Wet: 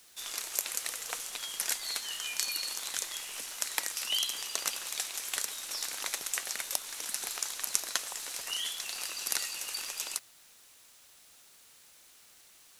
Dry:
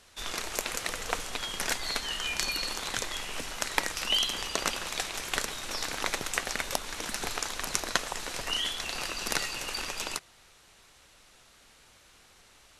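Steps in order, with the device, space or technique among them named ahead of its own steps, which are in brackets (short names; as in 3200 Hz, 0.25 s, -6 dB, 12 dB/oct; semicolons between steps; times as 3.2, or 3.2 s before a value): turntable without a phono preamp (RIAA curve recording; white noise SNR 25 dB); gain -9.5 dB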